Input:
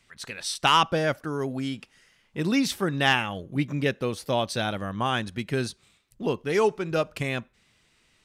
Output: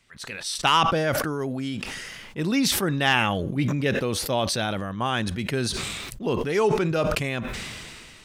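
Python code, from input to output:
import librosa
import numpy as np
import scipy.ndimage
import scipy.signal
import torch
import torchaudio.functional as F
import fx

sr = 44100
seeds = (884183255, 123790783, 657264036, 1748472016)

y = fx.sustainer(x, sr, db_per_s=25.0)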